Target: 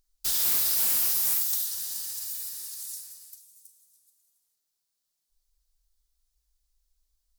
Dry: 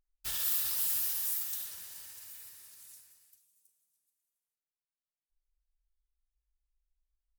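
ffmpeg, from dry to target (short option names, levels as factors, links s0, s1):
-filter_complex "[0:a]highshelf=f=3400:t=q:w=1.5:g=8,asplit=2[s0][s1];[s1]acompressor=threshold=0.01:ratio=6,volume=1.33[s2];[s0][s2]amix=inputs=2:normalize=0,volume=11.2,asoftclip=hard,volume=0.0891"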